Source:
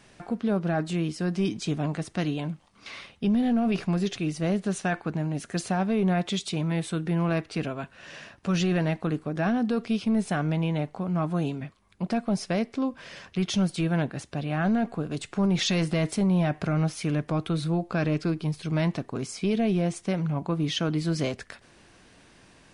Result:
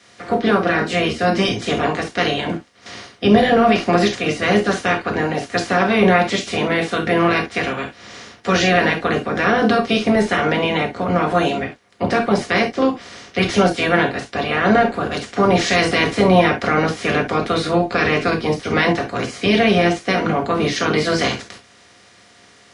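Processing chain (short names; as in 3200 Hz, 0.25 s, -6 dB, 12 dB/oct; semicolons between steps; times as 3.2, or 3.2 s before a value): spectral limiter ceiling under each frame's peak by 23 dB; reverb, pre-delay 3 ms, DRR 0 dB; gain -1 dB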